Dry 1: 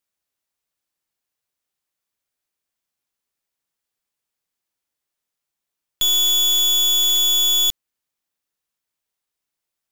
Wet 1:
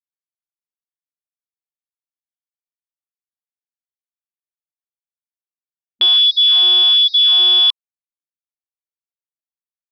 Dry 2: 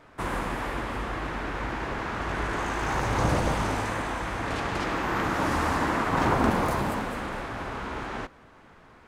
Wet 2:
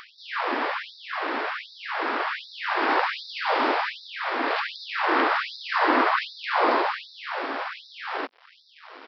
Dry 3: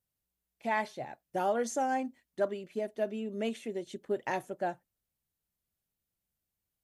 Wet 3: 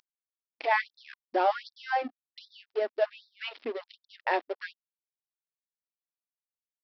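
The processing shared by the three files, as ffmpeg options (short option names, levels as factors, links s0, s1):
-af "acompressor=mode=upward:threshold=0.02:ratio=2.5,aresample=11025,aeval=exprs='sgn(val(0))*max(abs(val(0))-0.00473,0)':c=same,aresample=44100,afftfilt=real='re*gte(b*sr/1024,220*pow(3600/220,0.5+0.5*sin(2*PI*1.3*pts/sr)))':imag='im*gte(b*sr/1024,220*pow(3600/220,0.5+0.5*sin(2*PI*1.3*pts/sr)))':win_size=1024:overlap=0.75,volume=2.37"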